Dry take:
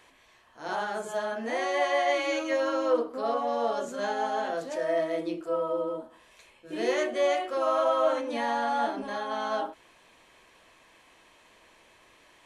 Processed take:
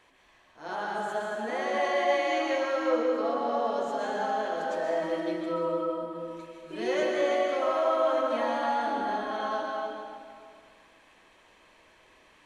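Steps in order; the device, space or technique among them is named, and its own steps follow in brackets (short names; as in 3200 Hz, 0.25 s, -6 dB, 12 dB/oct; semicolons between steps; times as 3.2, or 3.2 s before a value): swimming-pool hall (reverb RT60 2.1 s, pre-delay 0.115 s, DRR -0.5 dB; high shelf 5900 Hz -7 dB); 5.02–7.12 comb 5.3 ms, depth 62%; gain -3 dB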